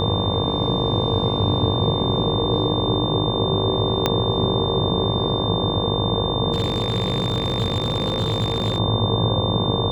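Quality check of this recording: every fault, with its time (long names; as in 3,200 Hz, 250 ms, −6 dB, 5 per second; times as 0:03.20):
mains buzz 50 Hz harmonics 23 −26 dBFS
whistle 3,600 Hz −26 dBFS
0:04.06: click −4 dBFS
0:06.52–0:08.78: clipping −17 dBFS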